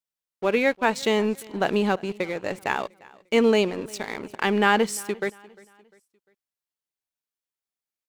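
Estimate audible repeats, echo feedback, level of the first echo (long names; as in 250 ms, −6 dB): 2, 41%, −23.5 dB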